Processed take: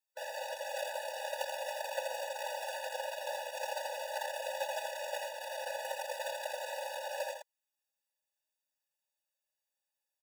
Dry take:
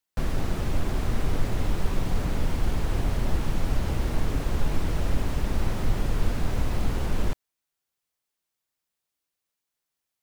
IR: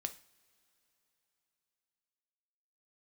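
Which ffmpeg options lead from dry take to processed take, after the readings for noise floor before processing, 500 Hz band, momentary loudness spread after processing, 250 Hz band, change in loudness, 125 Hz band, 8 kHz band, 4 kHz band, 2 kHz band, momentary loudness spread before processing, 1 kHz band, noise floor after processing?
−85 dBFS, −1.0 dB, 2 LU, below −40 dB, −9.0 dB, below −40 dB, −1.5 dB, −1.5 dB, −1.5 dB, 1 LU, −1.0 dB, below −85 dBFS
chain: -filter_complex "[0:a]aeval=exprs='0.299*(cos(1*acos(clip(val(0)/0.299,-1,1)))-cos(1*PI/2))+0.0531*(cos(3*acos(clip(val(0)/0.299,-1,1)))-cos(3*PI/2))+0.0168*(cos(6*acos(clip(val(0)/0.299,-1,1)))-cos(6*PI/2))+0.0266*(cos(8*acos(clip(val(0)/0.299,-1,1)))-cos(8*PI/2))':channel_layout=same,aecho=1:1:3.5:0.85,asplit=2[link_01][link_02];[link_02]aecho=0:1:83:0.668[link_03];[link_01][link_03]amix=inputs=2:normalize=0,afftfilt=real='re*eq(mod(floor(b*sr/1024/490),2),1)':imag='im*eq(mod(floor(b*sr/1024/490),2),1)':win_size=1024:overlap=0.75"

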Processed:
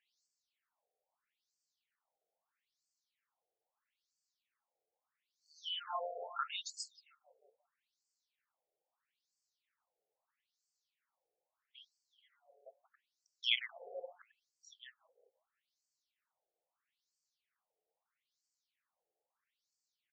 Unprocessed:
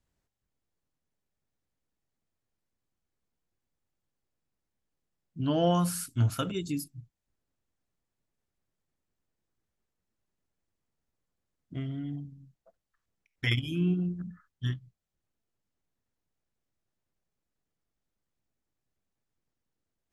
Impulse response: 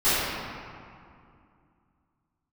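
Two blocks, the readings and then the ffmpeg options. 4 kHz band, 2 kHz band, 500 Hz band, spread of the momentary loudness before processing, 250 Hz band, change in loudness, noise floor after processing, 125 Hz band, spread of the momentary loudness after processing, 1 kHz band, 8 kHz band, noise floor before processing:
0.0 dB, −5.5 dB, −14.0 dB, 16 LU, below −40 dB, −8.5 dB, below −85 dBFS, below −40 dB, 23 LU, −7.0 dB, −12.0 dB, below −85 dBFS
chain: -filter_complex "[0:a]asubboost=boost=11.5:cutoff=160,afftfilt=real='re*lt(hypot(re,im),2.24)':imag='im*lt(hypot(re,im),2.24)':win_size=1024:overlap=0.75,lowshelf=frequency=77:gain=10,asplit=2[link_01][link_02];[link_02]acompressor=threshold=-36dB:ratio=8,volume=3dB[link_03];[link_01][link_03]amix=inputs=2:normalize=0,asoftclip=type=tanh:threshold=-8.5dB,asplit=2[link_04][link_05];[link_05]adelay=179,lowpass=frequency=1500:poles=1,volume=-5dB,asplit=2[link_06][link_07];[link_07]adelay=179,lowpass=frequency=1500:poles=1,volume=0.52,asplit=2[link_08][link_09];[link_09]adelay=179,lowpass=frequency=1500:poles=1,volume=0.52,asplit=2[link_10][link_11];[link_11]adelay=179,lowpass=frequency=1500:poles=1,volume=0.52,asplit=2[link_12][link_13];[link_13]adelay=179,lowpass=frequency=1500:poles=1,volume=0.52,asplit=2[link_14][link_15];[link_15]adelay=179,lowpass=frequency=1500:poles=1,volume=0.52,asplit=2[link_16][link_17];[link_17]adelay=179,lowpass=frequency=1500:poles=1,volume=0.52[link_18];[link_04][link_06][link_08][link_10][link_12][link_14][link_16][link_18]amix=inputs=8:normalize=0,afftfilt=real='re*between(b*sr/1024,550*pow(6200/550,0.5+0.5*sin(2*PI*0.77*pts/sr))/1.41,550*pow(6200/550,0.5+0.5*sin(2*PI*0.77*pts/sr))*1.41)':imag='im*between(b*sr/1024,550*pow(6200/550,0.5+0.5*sin(2*PI*0.77*pts/sr))/1.41,550*pow(6200/550,0.5+0.5*sin(2*PI*0.77*pts/sr))*1.41)':win_size=1024:overlap=0.75,volume=1.5dB"

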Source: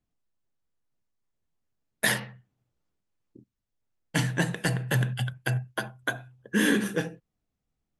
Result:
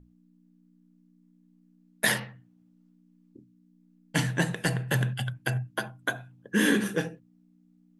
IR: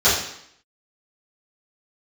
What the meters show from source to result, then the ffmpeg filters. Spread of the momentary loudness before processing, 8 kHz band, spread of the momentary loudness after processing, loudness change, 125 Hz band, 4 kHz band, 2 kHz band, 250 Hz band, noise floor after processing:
10 LU, 0.0 dB, 10 LU, 0.0 dB, −1.0 dB, 0.0 dB, 0.0 dB, 0.0 dB, −62 dBFS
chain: -af "aeval=exprs='val(0)+0.00251*(sin(2*PI*60*n/s)+sin(2*PI*2*60*n/s)/2+sin(2*PI*3*60*n/s)/3+sin(2*PI*4*60*n/s)/4+sin(2*PI*5*60*n/s)/5)':channel_layout=same,bandreject=frequency=60:width_type=h:width=6,bandreject=frequency=120:width_type=h:width=6"

